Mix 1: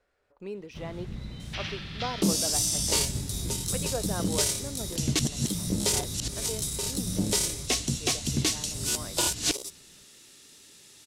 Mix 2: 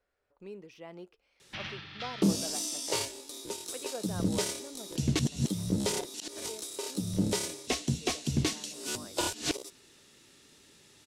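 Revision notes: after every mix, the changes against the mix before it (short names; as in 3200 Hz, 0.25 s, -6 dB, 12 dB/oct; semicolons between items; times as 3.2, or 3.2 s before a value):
speech -7.0 dB; first sound: muted; second sound: add high shelf 3500 Hz -10.5 dB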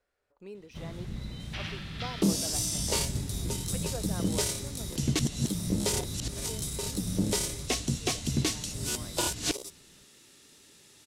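first sound: unmuted; master: add high shelf 6700 Hz +7 dB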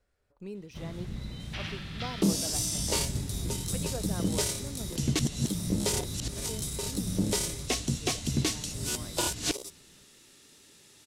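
speech: add tone controls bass +12 dB, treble +4 dB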